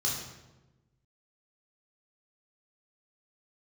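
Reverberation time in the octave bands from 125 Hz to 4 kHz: 1.6 s, 1.4 s, 1.2 s, 0.95 s, 0.85 s, 0.75 s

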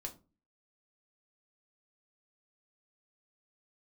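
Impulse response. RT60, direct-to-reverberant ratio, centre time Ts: 0.30 s, 2.0 dB, 9 ms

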